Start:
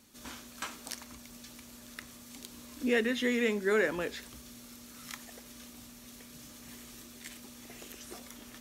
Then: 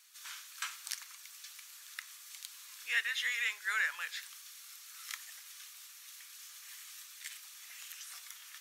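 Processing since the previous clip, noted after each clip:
high-pass filter 1,300 Hz 24 dB per octave
level +1.5 dB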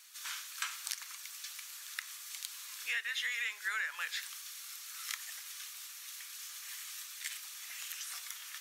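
downward compressor 6 to 1, threshold −38 dBFS, peak gain reduction 11.5 dB
level +5 dB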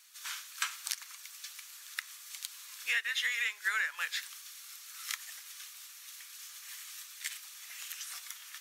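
expander for the loud parts 1.5 to 1, over −48 dBFS
level +5 dB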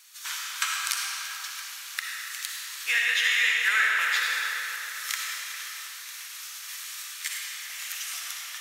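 comb and all-pass reverb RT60 4.1 s, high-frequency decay 0.7×, pre-delay 20 ms, DRR −3.5 dB
level +5.5 dB

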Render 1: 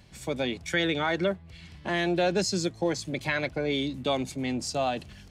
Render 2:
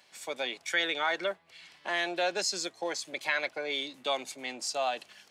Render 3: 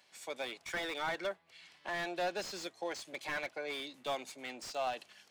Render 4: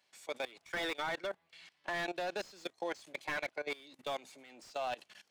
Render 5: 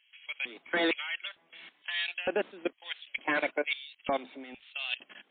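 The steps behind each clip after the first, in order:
high-pass filter 660 Hz 12 dB per octave
slew-rate limiting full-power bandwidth 62 Hz; level −5 dB
output level in coarse steps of 20 dB; level +4 dB
auto-filter high-pass square 1.1 Hz 260–2,900 Hz; level +8 dB; MP3 24 kbit/s 8,000 Hz

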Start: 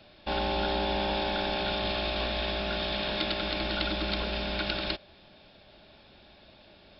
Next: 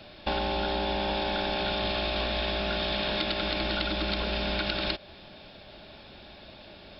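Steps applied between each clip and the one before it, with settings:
downward compressor, threshold −33 dBFS, peak gain reduction 8 dB
level +7 dB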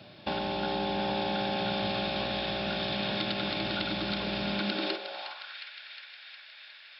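feedback echo with a high-pass in the loop 360 ms, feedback 65%, high-pass 160 Hz, level −9 dB
high-pass filter sweep 130 Hz → 1,800 Hz, 0:04.48–0:05.60
level −3.5 dB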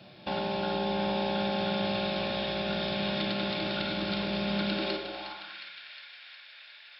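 rectangular room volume 350 cubic metres, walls mixed, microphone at 0.89 metres
level −2.5 dB

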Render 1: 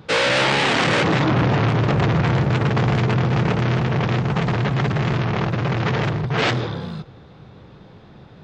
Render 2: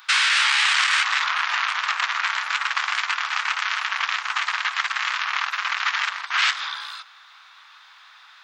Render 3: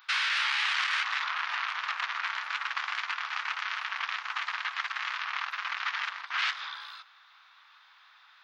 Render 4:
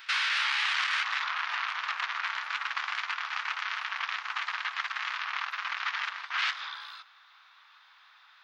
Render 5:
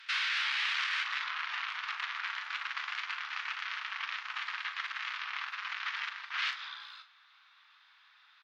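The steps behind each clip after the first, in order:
Butterworth high-pass 1,100 Hz 36 dB per octave; high-shelf EQ 7,900 Hz +8.5 dB; downward compressor 2 to 1, threshold −28 dBFS, peak gain reduction 7 dB; level +7.5 dB
parametric band 8,100 Hz −14.5 dB 0.66 octaves; level −8.5 dB
backwards echo 237 ms −21 dB
resonant band-pass 2,900 Hz, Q 0.52; double-tracking delay 39 ms −9 dB; level −3.5 dB; AAC 128 kbit/s 48,000 Hz

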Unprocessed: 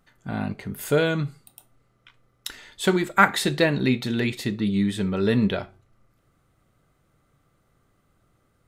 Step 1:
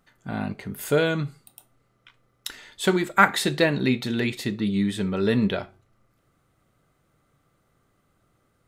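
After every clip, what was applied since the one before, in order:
low-shelf EQ 93 Hz −5.5 dB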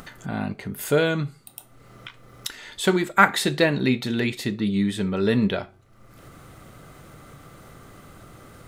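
upward compression, threshold −29 dBFS
level +1 dB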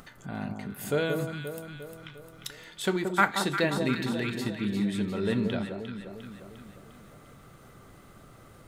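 delay that swaps between a low-pass and a high-pass 176 ms, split 1,200 Hz, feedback 72%, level −5 dB
level −7.5 dB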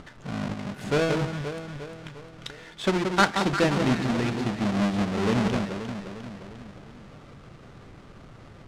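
each half-wave held at its own peak
high-frequency loss of the air 85 metres

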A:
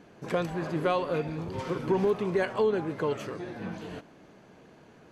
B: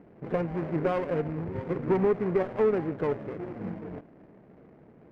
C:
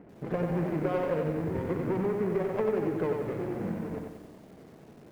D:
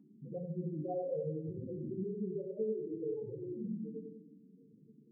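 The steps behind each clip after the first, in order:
running median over 41 samples; Chebyshev low-pass filter 2,200 Hz, order 4; windowed peak hold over 5 samples; level +3 dB
downward compressor 16 to 1, threshold −28 dBFS, peak gain reduction 9 dB; feedback echo at a low word length 92 ms, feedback 55%, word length 10 bits, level −4 dB; level +1.5 dB
stylus tracing distortion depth 0.094 ms; spectral peaks only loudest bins 4; convolution reverb RT60 1.0 s, pre-delay 3 ms, DRR 4 dB; level −3 dB

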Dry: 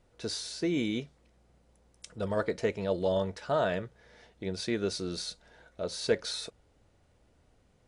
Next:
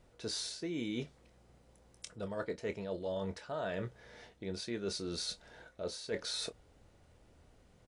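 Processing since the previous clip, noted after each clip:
reversed playback
downward compressor 6 to 1, threshold −38 dBFS, peak gain reduction 16.5 dB
reversed playback
double-tracking delay 25 ms −11 dB
level +2 dB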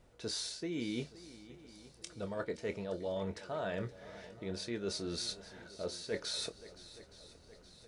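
feedback echo with a long and a short gap by turns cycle 869 ms, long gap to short 1.5 to 1, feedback 51%, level −17 dB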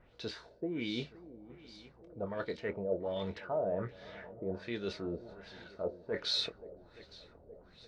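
auto-filter low-pass sine 1.3 Hz 530–4,400 Hz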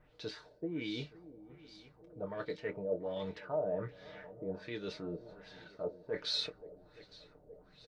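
comb filter 6.6 ms, depth 58%
level −3.5 dB

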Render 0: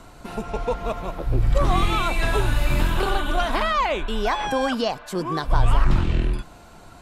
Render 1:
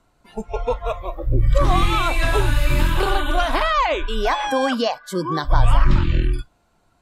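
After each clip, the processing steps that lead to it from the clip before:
noise reduction from a noise print of the clip's start 20 dB
level +3 dB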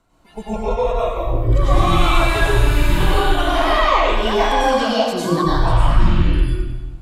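in parallel at +2.5 dB: downward compressor, threshold −21 dBFS, peak gain reduction 12 dB
on the sum: convolution reverb RT60 1.3 s, pre-delay 90 ms, DRR −7 dB
level −9.5 dB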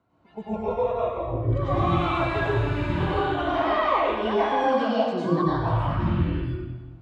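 high-pass filter 72 Hz 24 dB per octave
head-to-tape spacing loss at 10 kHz 29 dB
level −3.5 dB

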